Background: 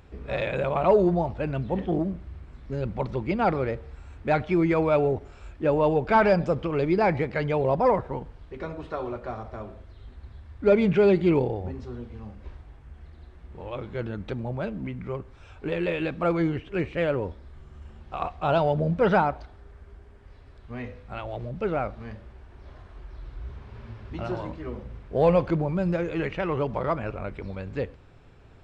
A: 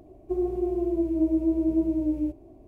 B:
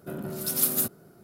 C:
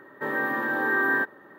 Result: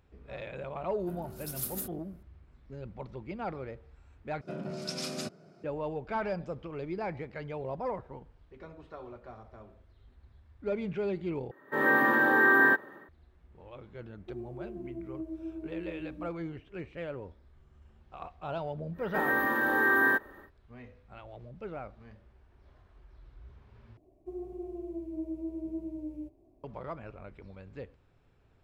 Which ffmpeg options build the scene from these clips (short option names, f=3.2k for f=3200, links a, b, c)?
-filter_complex "[2:a]asplit=2[a][b];[3:a]asplit=2[c][d];[1:a]asplit=2[e][f];[0:a]volume=-13.5dB[g];[b]highpass=110,equalizer=f=170:t=q:w=4:g=5,equalizer=f=620:t=q:w=4:g=8,equalizer=f=2.4k:t=q:w=4:g=8,equalizer=f=5.1k:t=q:w=4:g=7,lowpass=f=6.6k:w=0.5412,lowpass=f=6.6k:w=1.3066[h];[c]dynaudnorm=f=160:g=3:m=13.5dB[i];[d]highshelf=f=6.5k:g=10[j];[g]asplit=4[k][l][m][n];[k]atrim=end=4.414[o];[h]atrim=end=1.23,asetpts=PTS-STARTPTS,volume=-5dB[p];[l]atrim=start=5.636:end=11.514[q];[i]atrim=end=1.58,asetpts=PTS-STARTPTS,volume=-9.5dB[r];[m]atrim=start=13.086:end=23.974[s];[f]atrim=end=2.67,asetpts=PTS-STARTPTS,volume=-13.5dB[t];[n]atrim=start=26.636[u];[a]atrim=end=1.23,asetpts=PTS-STARTPTS,volume=-12.5dB,afade=t=in:d=0.004:c=hsin,afade=t=out:st=1.226:d=0.004:c=hsin,adelay=1000[v];[e]atrim=end=2.67,asetpts=PTS-STARTPTS,volume=-16dB,afade=t=in:d=0.004:c=hsin,afade=t=out:st=2.666:d=0.004:c=hsin,adelay=13980[w];[j]atrim=end=1.58,asetpts=PTS-STARTPTS,volume=-1.5dB,afade=t=in:d=0.1,afade=t=out:st=1.48:d=0.1,adelay=18930[x];[o][p]acrossfade=d=0.004:c1=hsin:c2=hsin[y];[y][q]acrossfade=d=0.004:c1=hsin:c2=hsin[z];[z][r]acrossfade=d=0.004:c1=hsin:c2=hsin[aa];[aa][s]acrossfade=d=0.004:c1=hsin:c2=hsin[ab];[ab][t]acrossfade=d=0.004:c1=hsin:c2=hsin[ac];[ac][u]acrossfade=d=0.004:c1=hsin:c2=hsin[ad];[ad][v][w][x]amix=inputs=4:normalize=0"